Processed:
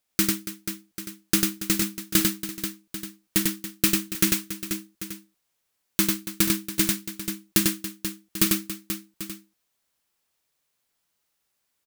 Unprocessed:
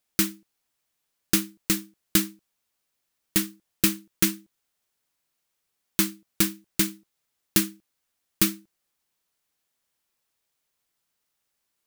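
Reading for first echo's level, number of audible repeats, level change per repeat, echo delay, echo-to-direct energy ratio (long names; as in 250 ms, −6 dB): −17.0 dB, 6, repeats not evenly spaced, 49 ms, −1.5 dB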